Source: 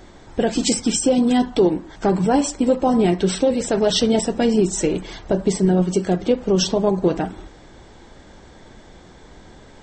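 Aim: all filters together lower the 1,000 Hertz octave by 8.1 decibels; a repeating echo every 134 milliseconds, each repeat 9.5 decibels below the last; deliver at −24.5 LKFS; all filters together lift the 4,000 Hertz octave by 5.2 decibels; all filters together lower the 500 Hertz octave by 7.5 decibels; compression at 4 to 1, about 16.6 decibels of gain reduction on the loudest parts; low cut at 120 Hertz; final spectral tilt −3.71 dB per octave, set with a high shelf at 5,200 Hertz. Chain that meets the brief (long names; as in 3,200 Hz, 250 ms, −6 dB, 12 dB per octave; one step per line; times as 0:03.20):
high-pass filter 120 Hz
parametric band 500 Hz −8 dB
parametric band 1,000 Hz −8 dB
parametric band 4,000 Hz +5 dB
high-shelf EQ 5,200 Hz +5 dB
downward compressor 4 to 1, threshold −33 dBFS
repeating echo 134 ms, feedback 33%, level −9.5 dB
level +9 dB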